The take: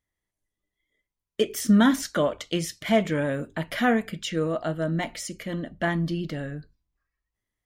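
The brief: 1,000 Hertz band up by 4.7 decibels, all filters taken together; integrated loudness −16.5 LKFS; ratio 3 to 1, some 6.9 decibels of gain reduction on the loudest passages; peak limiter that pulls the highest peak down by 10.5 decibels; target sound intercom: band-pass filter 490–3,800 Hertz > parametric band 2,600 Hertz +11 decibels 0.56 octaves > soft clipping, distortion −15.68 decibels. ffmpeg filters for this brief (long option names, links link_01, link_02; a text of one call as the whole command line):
ffmpeg -i in.wav -af "equalizer=frequency=1000:width_type=o:gain=7,acompressor=threshold=-23dB:ratio=3,alimiter=limit=-23dB:level=0:latency=1,highpass=490,lowpass=3800,equalizer=frequency=2600:width_type=o:width=0.56:gain=11,asoftclip=threshold=-26.5dB,volume=19.5dB" out.wav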